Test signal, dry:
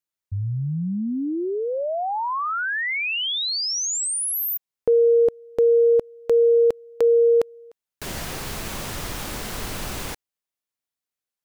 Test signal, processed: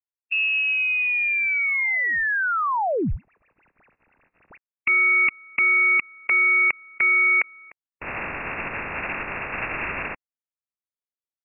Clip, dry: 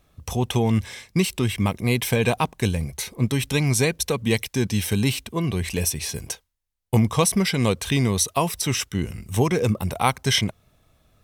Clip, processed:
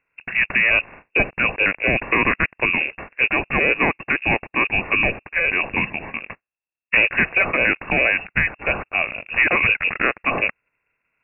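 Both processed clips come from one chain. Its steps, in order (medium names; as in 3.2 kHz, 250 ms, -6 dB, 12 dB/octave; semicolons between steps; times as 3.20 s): spectral peaks clipped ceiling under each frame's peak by 18 dB; waveshaping leveller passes 3; frequency inversion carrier 2.7 kHz; trim -6.5 dB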